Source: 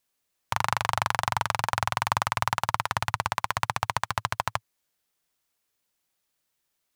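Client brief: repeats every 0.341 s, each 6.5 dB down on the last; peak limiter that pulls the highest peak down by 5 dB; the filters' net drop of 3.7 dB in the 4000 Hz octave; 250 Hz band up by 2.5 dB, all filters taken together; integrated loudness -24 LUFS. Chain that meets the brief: bell 250 Hz +4.5 dB; bell 4000 Hz -5 dB; limiter -11 dBFS; feedback echo 0.341 s, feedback 47%, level -6.5 dB; gain +7.5 dB

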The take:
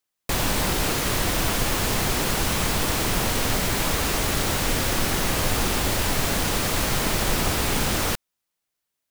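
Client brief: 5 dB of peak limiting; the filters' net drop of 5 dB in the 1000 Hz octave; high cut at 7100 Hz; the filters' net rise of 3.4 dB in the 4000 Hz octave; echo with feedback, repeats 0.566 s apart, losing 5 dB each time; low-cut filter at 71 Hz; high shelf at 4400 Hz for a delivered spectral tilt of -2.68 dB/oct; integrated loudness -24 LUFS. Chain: HPF 71 Hz; LPF 7100 Hz; bell 1000 Hz -7 dB; bell 4000 Hz +3.5 dB; high shelf 4400 Hz +3 dB; limiter -16 dBFS; feedback echo 0.566 s, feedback 56%, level -5 dB; gain -0.5 dB

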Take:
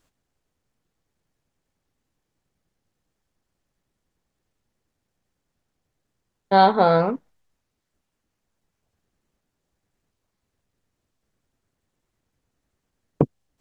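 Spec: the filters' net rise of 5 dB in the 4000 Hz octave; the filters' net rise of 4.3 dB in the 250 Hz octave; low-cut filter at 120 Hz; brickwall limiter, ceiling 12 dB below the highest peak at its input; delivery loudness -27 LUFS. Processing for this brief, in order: HPF 120 Hz; bell 250 Hz +7 dB; bell 4000 Hz +5.5 dB; gain -1.5 dB; limiter -13.5 dBFS

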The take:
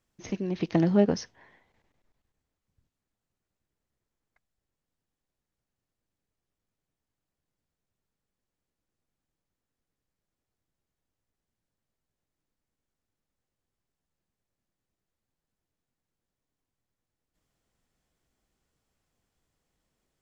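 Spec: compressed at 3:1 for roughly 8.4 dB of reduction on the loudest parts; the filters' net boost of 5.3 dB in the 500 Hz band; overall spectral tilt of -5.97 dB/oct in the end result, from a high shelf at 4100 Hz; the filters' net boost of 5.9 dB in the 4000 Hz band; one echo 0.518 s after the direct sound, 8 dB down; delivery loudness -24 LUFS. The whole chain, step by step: bell 500 Hz +7 dB; bell 4000 Hz +5 dB; high shelf 4100 Hz +4.5 dB; compressor 3:1, threshold -24 dBFS; echo 0.518 s -8 dB; gain +6.5 dB

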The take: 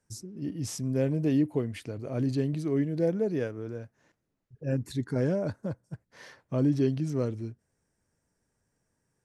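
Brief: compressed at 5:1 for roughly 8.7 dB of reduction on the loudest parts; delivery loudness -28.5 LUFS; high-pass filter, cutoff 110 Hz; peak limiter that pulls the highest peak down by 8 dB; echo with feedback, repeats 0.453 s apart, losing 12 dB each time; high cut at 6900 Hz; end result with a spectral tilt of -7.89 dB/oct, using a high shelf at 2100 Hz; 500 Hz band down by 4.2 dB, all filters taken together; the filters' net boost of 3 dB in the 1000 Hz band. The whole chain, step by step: HPF 110 Hz; LPF 6900 Hz; bell 500 Hz -6.5 dB; bell 1000 Hz +8 dB; high shelf 2100 Hz -6 dB; compressor 5:1, threshold -32 dBFS; limiter -31 dBFS; feedback echo 0.453 s, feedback 25%, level -12 dB; gain +12 dB

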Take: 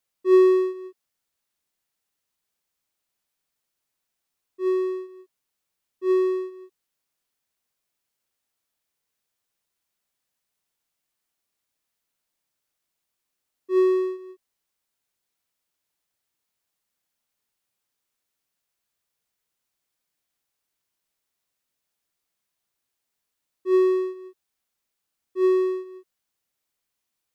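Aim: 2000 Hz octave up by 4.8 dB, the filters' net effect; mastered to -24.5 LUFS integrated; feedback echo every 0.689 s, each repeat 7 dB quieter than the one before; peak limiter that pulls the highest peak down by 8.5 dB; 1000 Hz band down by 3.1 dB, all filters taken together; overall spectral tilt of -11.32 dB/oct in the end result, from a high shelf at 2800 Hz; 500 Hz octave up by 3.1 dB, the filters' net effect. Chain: bell 500 Hz +6 dB; bell 1000 Hz -6.5 dB; bell 2000 Hz +4 dB; high shelf 2800 Hz +7 dB; limiter -13.5 dBFS; feedback echo 0.689 s, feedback 45%, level -7 dB; gain +1 dB

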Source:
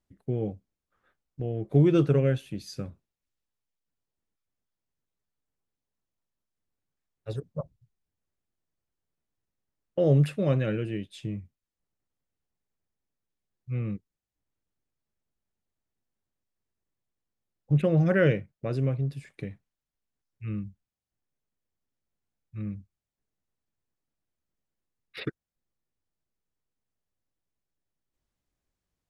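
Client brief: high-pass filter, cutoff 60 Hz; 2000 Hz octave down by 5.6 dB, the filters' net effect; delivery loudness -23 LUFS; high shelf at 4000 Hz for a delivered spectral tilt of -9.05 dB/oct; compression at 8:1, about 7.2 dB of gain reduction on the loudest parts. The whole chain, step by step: HPF 60 Hz; bell 2000 Hz -6 dB; high shelf 4000 Hz -8.5 dB; compressor 8:1, threshold -24 dBFS; gain +10 dB

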